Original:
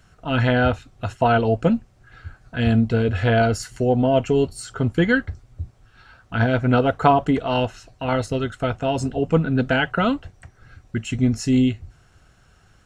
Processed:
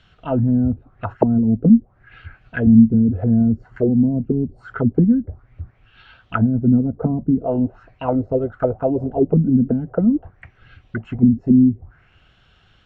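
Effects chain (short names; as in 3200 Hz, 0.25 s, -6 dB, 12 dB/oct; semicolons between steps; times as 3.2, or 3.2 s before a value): envelope low-pass 220–3500 Hz down, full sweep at -15.5 dBFS; gain -1.5 dB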